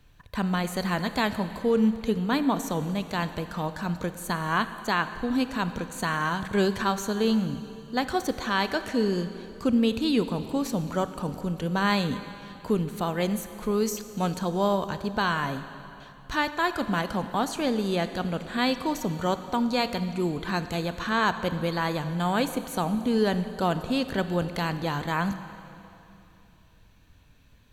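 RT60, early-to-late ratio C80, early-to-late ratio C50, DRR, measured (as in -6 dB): 3.0 s, 11.5 dB, 11.0 dB, 10.5 dB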